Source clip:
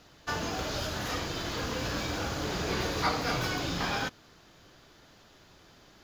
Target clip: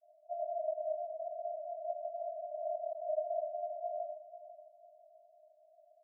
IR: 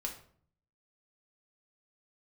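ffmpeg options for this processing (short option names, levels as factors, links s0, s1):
-filter_complex "[0:a]asuperpass=centerf=650:order=20:qfactor=6.3,aecho=1:1:495|990|1485:0.211|0.074|0.0259,asplit=2[s0][s1];[1:a]atrim=start_sample=2205,asetrate=31311,aresample=44100[s2];[s1][s2]afir=irnorm=-1:irlink=0,volume=1.26[s3];[s0][s3]amix=inputs=2:normalize=0"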